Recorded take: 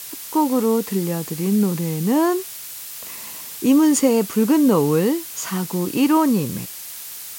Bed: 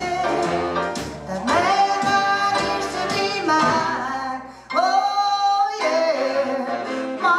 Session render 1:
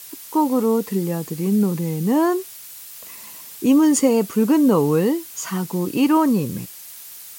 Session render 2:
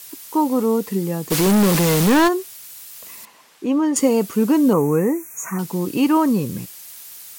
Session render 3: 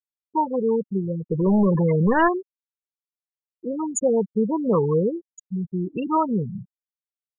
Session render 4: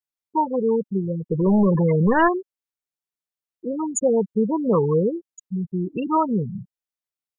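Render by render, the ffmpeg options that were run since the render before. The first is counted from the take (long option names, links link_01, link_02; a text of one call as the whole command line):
ffmpeg -i in.wav -af "afftdn=noise_reduction=6:noise_floor=-35" out.wav
ffmpeg -i in.wav -filter_complex "[0:a]asplit=3[link_01][link_02][link_03];[link_01]afade=type=out:start_time=1.3:duration=0.02[link_04];[link_02]asplit=2[link_05][link_06];[link_06]highpass=frequency=720:poles=1,volume=36dB,asoftclip=type=tanh:threshold=-8.5dB[link_07];[link_05][link_07]amix=inputs=2:normalize=0,lowpass=frequency=5700:poles=1,volume=-6dB,afade=type=in:start_time=1.3:duration=0.02,afade=type=out:start_time=2.27:duration=0.02[link_08];[link_03]afade=type=in:start_time=2.27:duration=0.02[link_09];[link_04][link_08][link_09]amix=inputs=3:normalize=0,asettb=1/sr,asplit=3[link_10][link_11][link_12];[link_10]atrim=end=3.254[link_13];[link_11]atrim=start=3.25:end=3.96,asetpts=PTS-STARTPTS,afade=type=in:duration=0.004:curve=qsin,afade=type=out:start_time=0.706:duration=0.004:curve=qsin,bandpass=frequency=850:width_type=q:width=0.51[link_14];[link_12]atrim=start=3.956[link_15];[link_13][link_14]acrossfade=duration=0.004:curve1=hsin:curve2=qsin[link_16];[link_16][link_15]acrossfade=duration=0.004:curve1=qsin:curve2=hsin,asettb=1/sr,asplit=3[link_17][link_18][link_19];[link_17]atrim=end=4.734[link_20];[link_18]atrim=start=4.73:end=5.59,asetpts=PTS-STARTPTS,afade=type=in:duration=0.004:curve=qsin,afade=type=out:start_time=0.856:duration=0.004:curve=qsin,asuperstop=centerf=3900:order=20:qfactor=1.2[link_21];[link_19]atrim=start=5.586[link_22];[link_20][link_21]acrossfade=duration=0.004:curve1=hsin:curve2=qsin[link_23];[link_23][link_22]acrossfade=duration=0.004:curve1=qsin:curve2=hsin" out.wav
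ffmpeg -i in.wav -af "afftfilt=real='re*gte(hypot(re,im),0.282)':imag='im*gte(hypot(re,im),0.282)':win_size=1024:overlap=0.75,equalizer=frequency=280:width=3.2:gain=-13" out.wav
ffmpeg -i in.wav -af "volume=1dB" out.wav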